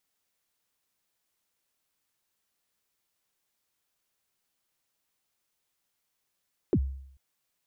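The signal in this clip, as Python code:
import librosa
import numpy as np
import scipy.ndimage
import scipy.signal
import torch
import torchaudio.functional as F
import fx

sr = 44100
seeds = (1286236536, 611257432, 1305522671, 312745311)

y = fx.drum_kick(sr, seeds[0], length_s=0.44, level_db=-18, start_hz=450.0, end_hz=67.0, sweep_ms=60.0, decay_s=0.69, click=False)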